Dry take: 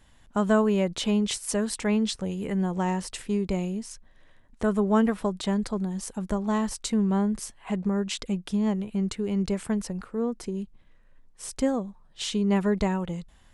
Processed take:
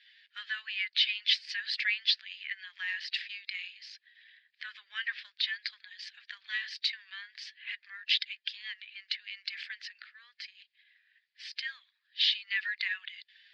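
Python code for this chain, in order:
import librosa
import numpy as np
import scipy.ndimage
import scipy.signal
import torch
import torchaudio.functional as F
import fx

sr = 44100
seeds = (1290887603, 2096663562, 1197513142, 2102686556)

y = fx.spec_quant(x, sr, step_db=15)
y = scipy.signal.sosfilt(scipy.signal.cheby1(4, 1.0, [1700.0, 4800.0], 'bandpass', fs=sr, output='sos'), y)
y = y * 10.0 ** (8.5 / 20.0)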